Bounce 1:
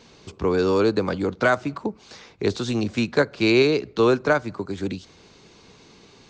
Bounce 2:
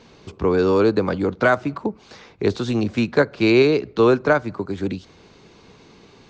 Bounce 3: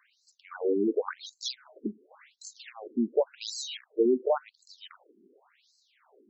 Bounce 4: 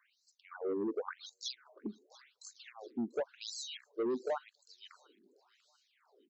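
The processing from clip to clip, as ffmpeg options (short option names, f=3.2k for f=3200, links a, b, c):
-af "highshelf=f=4.2k:g=-9.5,volume=3dB"
-af "acrusher=samples=9:mix=1:aa=0.000001:lfo=1:lforange=9:lforate=1.7,afftfilt=real='re*between(b*sr/1024,280*pow(5800/280,0.5+0.5*sin(2*PI*0.91*pts/sr))/1.41,280*pow(5800/280,0.5+0.5*sin(2*PI*0.91*pts/sr))*1.41)':imag='im*between(b*sr/1024,280*pow(5800/280,0.5+0.5*sin(2*PI*0.91*pts/sr))/1.41,280*pow(5800/280,0.5+0.5*sin(2*PI*0.91*pts/sr))*1.41)':win_size=1024:overlap=0.75,volume=-6dB"
-filter_complex "[0:a]acrossover=split=130|1100[a][b][c];[b]asoftclip=type=tanh:threshold=-23dB[d];[c]aecho=1:1:691|1382|2073:0.0891|0.0401|0.018[e];[a][d][e]amix=inputs=3:normalize=0,volume=-6.5dB"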